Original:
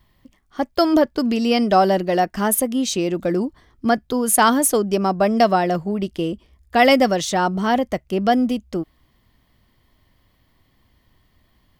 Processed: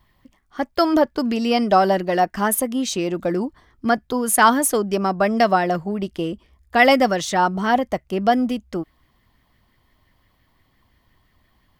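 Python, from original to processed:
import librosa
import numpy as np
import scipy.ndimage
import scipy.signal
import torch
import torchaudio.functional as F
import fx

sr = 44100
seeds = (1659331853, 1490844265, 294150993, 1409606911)

y = fx.bell_lfo(x, sr, hz=5.8, low_hz=810.0, high_hz=2000.0, db=7)
y = F.gain(torch.from_numpy(y), -2.0).numpy()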